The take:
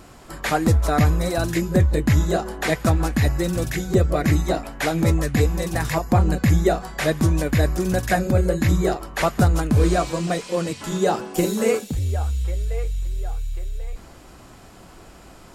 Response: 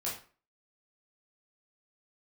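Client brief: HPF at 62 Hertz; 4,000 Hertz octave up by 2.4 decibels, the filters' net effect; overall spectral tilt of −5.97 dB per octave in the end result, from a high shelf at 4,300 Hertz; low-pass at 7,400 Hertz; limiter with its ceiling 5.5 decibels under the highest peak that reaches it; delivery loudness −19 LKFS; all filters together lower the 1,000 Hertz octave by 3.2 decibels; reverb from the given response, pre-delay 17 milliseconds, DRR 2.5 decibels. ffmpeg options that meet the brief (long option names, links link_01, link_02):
-filter_complex "[0:a]highpass=62,lowpass=7400,equalizer=frequency=1000:width_type=o:gain=-5,equalizer=frequency=4000:width_type=o:gain=7.5,highshelf=frequency=4300:gain=-8,alimiter=limit=-12dB:level=0:latency=1,asplit=2[link_01][link_02];[1:a]atrim=start_sample=2205,adelay=17[link_03];[link_02][link_03]afir=irnorm=-1:irlink=0,volume=-5.5dB[link_04];[link_01][link_04]amix=inputs=2:normalize=0,volume=2.5dB"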